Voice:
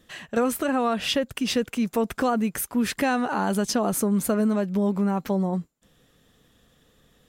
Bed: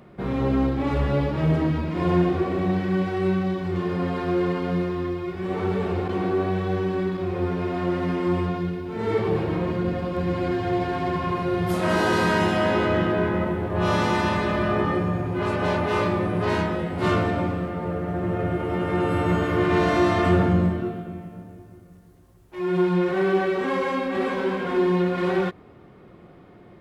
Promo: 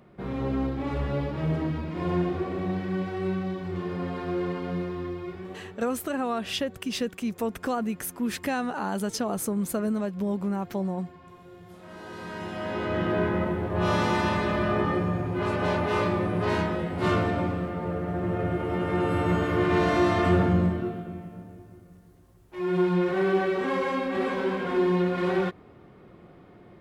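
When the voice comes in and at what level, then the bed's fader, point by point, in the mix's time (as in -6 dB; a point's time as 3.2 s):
5.45 s, -5.0 dB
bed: 5.33 s -6 dB
5.82 s -24 dB
11.86 s -24 dB
13.16 s -2.5 dB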